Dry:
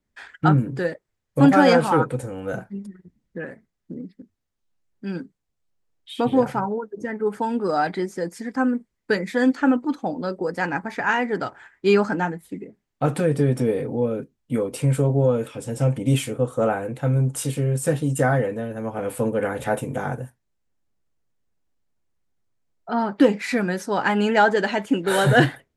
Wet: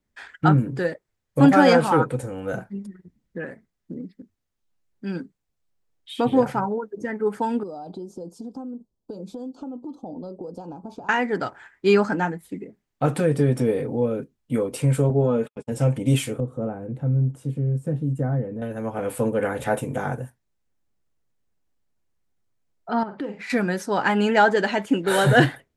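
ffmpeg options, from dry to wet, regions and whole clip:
-filter_complex "[0:a]asettb=1/sr,asplit=3[s0][s1][s2];[s0]atrim=end=7.634[s3];[s1]atrim=start=7.63:end=11.09,asetpts=PTS-STARTPTS,afade=t=in:d=0.004:c=qsin,afade=t=out:st=3.456:d=0.004:c=qsin,highshelf=f=4200:g=-12,acompressor=threshold=0.0316:ratio=16:attack=3.2:release=140:knee=1:detection=peak,asuperstop=centerf=1900:order=4:qfactor=0.58[s4];[s2]atrim=start=11.086[s5];[s3][s4]acrossfade=d=0.004:c1=hsin:c2=qsin[s6];[s6][s5]acrossfade=d=0.004:c1=qsin:c2=hsin,asettb=1/sr,asplit=3[s7][s8][s9];[s7]atrim=end=15.104[s10];[s8]atrim=start=15.1:end=15.72,asetpts=PTS-STARTPTS,afade=t=in:d=0.004:c=qsin,afade=t=out:st=0.616:d=0.004:c=qsin,highshelf=f=5300:g=-11,aecho=1:1:4.8:0.5,atrim=end_sample=27342,agate=range=0.00141:threshold=0.02:ratio=16:release=100:detection=peak[s11];[s9]atrim=start=15.716[s12];[s10][s11]acrossfade=d=0.004:c1=hsin:c2=qsin[s13];[s13][s12]acrossfade=d=0.004:c1=qsin:c2=hsin,asettb=1/sr,asplit=3[s14][s15][s16];[s14]atrim=end=16.404[s17];[s15]atrim=start=16.4:end=18.62,asetpts=PTS-STARTPTS,afade=t=in:d=0.004:c=qsin,afade=t=out:st=2.216:d=0.004:c=qsin,aemphasis=mode=production:type=50fm,acompressor=mode=upward:threshold=0.0794:ratio=2.5:attack=3.2:release=140:knee=2.83:detection=peak,bandpass=f=150:t=q:w=0.81[s18];[s16]atrim=start=18.616[s19];[s17][s18]acrossfade=d=0.004:c1=hsin:c2=qsin[s20];[s20][s19]acrossfade=d=0.004:c1=qsin:c2=hsin,asettb=1/sr,asplit=3[s21][s22][s23];[s21]atrim=end=23.034[s24];[s22]atrim=start=23.03:end=23.5,asetpts=PTS-STARTPTS,afade=t=in:d=0.004:c=qsin,afade=t=out:st=0.466:d=0.004:c=qsin,lowpass=f=2200:p=1,asplit=2[s25][s26];[s26]adelay=47,volume=0.282[s27];[s25][s27]amix=inputs=2:normalize=0,atrim=end_sample=20727,acompressor=threshold=0.02:ratio=2.5:attack=3.2:release=140:knee=1:detection=peak[s28];[s23]atrim=start=23.496[s29];[s24][s28]acrossfade=d=0.004:c1=hsin:c2=qsin[s30];[s30][s29]acrossfade=d=0.004:c1=qsin:c2=hsin"

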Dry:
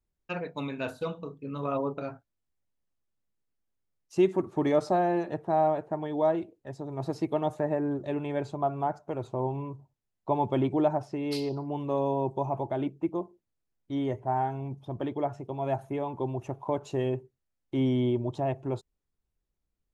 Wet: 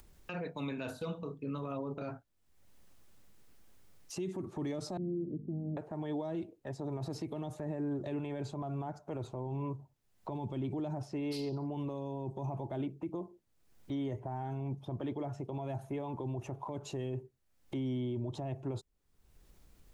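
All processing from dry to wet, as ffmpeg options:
-filter_complex "[0:a]asettb=1/sr,asplit=3[s0][s1][s2];[s0]atrim=end=4.974[s3];[s1]atrim=start=4.97:end=5.77,asetpts=PTS-STARTPTS,afade=t=in:d=0.004:c=qsin,afade=t=out:st=0.796:d=0.004:c=qsin,aeval=exprs='0.075*(abs(mod(val(0)/0.075+3,4)-2)-1)':c=same,aeval=exprs='val(0)+0.00891*(sin(2*PI*50*n/s)+sin(2*PI*2*50*n/s)/2+sin(2*PI*3*50*n/s)/3+sin(2*PI*4*50*n/s)/4+sin(2*PI*5*50*n/s)/5)':c=same,asuperpass=centerf=220:order=8:qfactor=0.89[s4];[s2]atrim=start=5.766[s5];[s3][s4]acrossfade=d=0.004:c1=hsin:c2=qsin[s6];[s6][s5]acrossfade=d=0.004:c1=qsin:c2=hsin,acrossover=split=300|3000[s7][s8][s9];[s8]acompressor=threshold=0.0178:ratio=6[s10];[s7][s10][s9]amix=inputs=3:normalize=0,alimiter=level_in=2.24:limit=0.0631:level=0:latency=1:release=35,volume=0.447,acompressor=mode=upward:threshold=0.00794:ratio=2.5,volume=1.12"

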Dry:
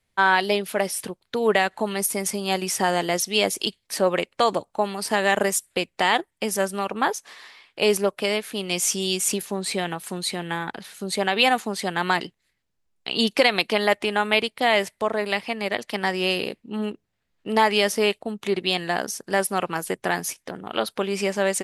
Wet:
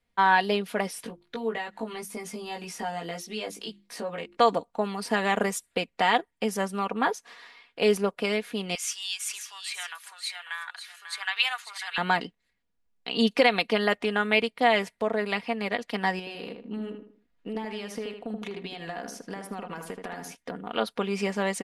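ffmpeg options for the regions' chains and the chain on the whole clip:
-filter_complex "[0:a]asettb=1/sr,asplit=3[s0][s1][s2];[s0]atrim=end=1.024[s3];[s1]atrim=start=1.02:end=4.37,asetpts=PTS-STARTPTS,afade=t=in:d=0.004:c=qsin,afade=t=out:st=3.346:d=0.004:c=qsin,bandreject=f=50:t=h:w=6,bandreject=f=100:t=h:w=6,bandreject=f=150:t=h:w=6,bandreject=f=200:t=h:w=6,bandreject=f=250:t=h:w=6,bandreject=f=300:t=h:w=6,bandreject=f=350:t=h:w=6,acompressor=threshold=0.0158:ratio=2:attack=3.2:release=140:knee=1:detection=peak,asplit=2[s4][s5];[s5]adelay=18,volume=0.75[s6];[s4][s6]amix=inputs=2:normalize=0,atrim=end_sample=147735[s7];[s2]atrim=start=4.366[s8];[s3][s7]acrossfade=d=0.004:c1=hsin:c2=qsin[s9];[s9][s8]acrossfade=d=0.004:c1=qsin:c2=hsin,asettb=1/sr,asplit=3[s10][s11][s12];[s10]atrim=end=8.754[s13];[s11]atrim=start=8.75:end=11.98,asetpts=PTS-STARTPTS,afade=t=in:d=0.004:c=qsin,afade=t=out:st=3.226:d=0.004:c=qsin,highpass=f=1200:w=0.5412,highpass=f=1200:w=1.3066,aecho=1:1:544:0.335,atrim=end_sample=142443[s14];[s12]atrim=start=11.976[s15];[s13][s14]acrossfade=d=0.004:c1=hsin:c2=qsin[s16];[s16][s15]acrossfade=d=0.004:c1=qsin:c2=hsin,asettb=1/sr,asplit=3[s17][s18][s19];[s17]atrim=end=16.194[s20];[s18]atrim=start=16.19:end=20.35,asetpts=PTS-STARTPTS,afade=t=in:d=0.004:c=qsin,afade=t=out:st=4.156:d=0.004:c=qsin,acompressor=threshold=0.0355:ratio=10:attack=3.2:release=140:knee=1:detection=peak,asplit=2[s21][s22];[s22]adelay=78,lowpass=f=2100:p=1,volume=0.562,asplit=2[s23][s24];[s24]adelay=78,lowpass=f=2100:p=1,volume=0.36,asplit=2[s25][s26];[s26]adelay=78,lowpass=f=2100:p=1,volume=0.36,asplit=2[s27][s28];[s28]adelay=78,lowpass=f=2100:p=1,volume=0.36[s29];[s21][s23][s25][s27][s29]amix=inputs=5:normalize=0,atrim=end_sample=183456[s30];[s19]atrim=start=20.346[s31];[s20][s30]acrossfade=d=0.004:c1=hsin:c2=qsin[s32];[s32][s31]acrossfade=d=0.004:c1=qsin:c2=hsin,highshelf=f=5400:g=-11,aecho=1:1:4.2:0.52,volume=0.708"

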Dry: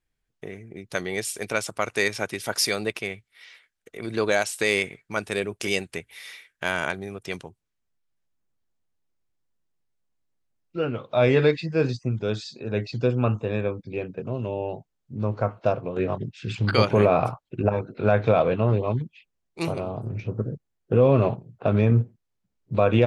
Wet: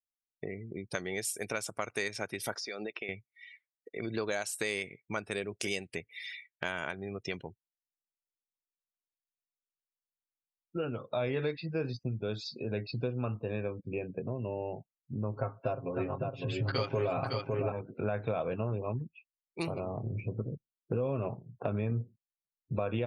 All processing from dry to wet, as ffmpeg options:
-filter_complex "[0:a]asettb=1/sr,asplit=3[s0][s1][s2];[s0]atrim=end=2.554[s3];[s1]atrim=start=2.55:end=3.09,asetpts=PTS-STARTPTS,afade=t=in:d=0.004:c=qsin,afade=t=out:st=0.536:d=0.004:c=qsin,highpass=240,lowpass=5700,acompressor=threshold=0.0251:ratio=12:attack=3.2:release=140:knee=1:detection=peak[s4];[s2]atrim=start=3.086[s5];[s3][s4]acrossfade=d=0.004:c1=hsin:c2=qsin[s6];[s6][s5]acrossfade=d=0.004:c1=qsin:c2=hsin,asettb=1/sr,asplit=3[s7][s8][s9];[s7]atrim=end=15.364[s10];[s8]atrim=start=15.36:end=17.72,asetpts=PTS-STARTPTS,afade=t=in:d=0.004:c=qsin,afade=t=out:st=2.356:d=0.004:c=qsin,aecho=1:1:7.4:0.8,atrim=end_sample=104076,aecho=1:1:557:0.473,atrim=end_sample=104076[s11];[s9]atrim=start=17.716[s12];[s10][s11]acrossfade=d=0.004:c1=hsin:c2=qsin[s13];[s13][s12]acrossfade=d=0.004:c1=qsin:c2=hsin,afftdn=nr=34:nf=-43,highshelf=f=6600:g=7,acompressor=threshold=0.02:ratio=3"

